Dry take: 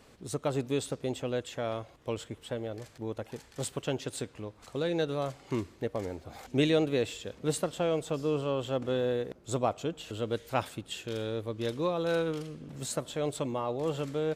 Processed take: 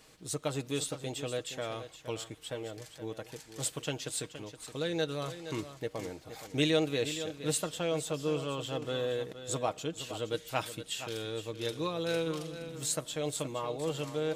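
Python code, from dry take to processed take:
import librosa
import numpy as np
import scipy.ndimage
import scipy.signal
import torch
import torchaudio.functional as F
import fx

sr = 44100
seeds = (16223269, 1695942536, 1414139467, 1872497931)

y = fx.high_shelf(x, sr, hz=2000.0, db=10.0)
y = y + 0.42 * np.pad(y, (int(6.4 * sr / 1000.0), 0))[:len(y)]
y = y + 10.0 ** (-11.5 / 20.0) * np.pad(y, (int(469 * sr / 1000.0), 0))[:len(y)]
y = y * 10.0 ** (-5.5 / 20.0)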